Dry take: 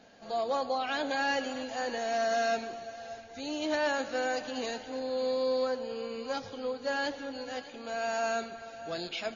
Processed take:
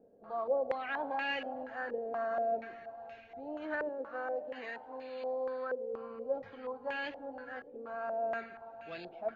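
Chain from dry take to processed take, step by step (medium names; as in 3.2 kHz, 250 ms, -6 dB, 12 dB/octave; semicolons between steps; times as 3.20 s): 3.89–5.94 s: bass shelf 260 Hz -9 dB; step-sequenced low-pass 4.2 Hz 460–2500 Hz; trim -9 dB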